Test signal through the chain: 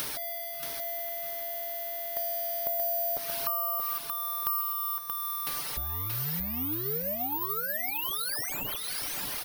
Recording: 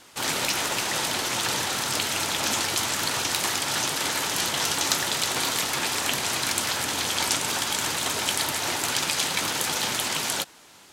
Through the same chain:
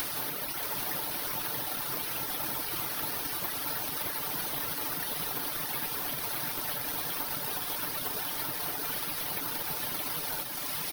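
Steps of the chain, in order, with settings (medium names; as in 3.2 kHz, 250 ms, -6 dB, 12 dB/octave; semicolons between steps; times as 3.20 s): one-bit delta coder 32 kbps, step -29 dBFS; reverb removal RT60 1.9 s; dynamic bell 2.6 kHz, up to -4 dB, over -41 dBFS, Q 1.2; comb 6.7 ms, depth 41%; compression 6:1, threshold -40 dBFS; feedback delay 629 ms, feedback 27%, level -4.5 dB; careless resampling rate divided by 3×, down none, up zero stuff; trim +2.5 dB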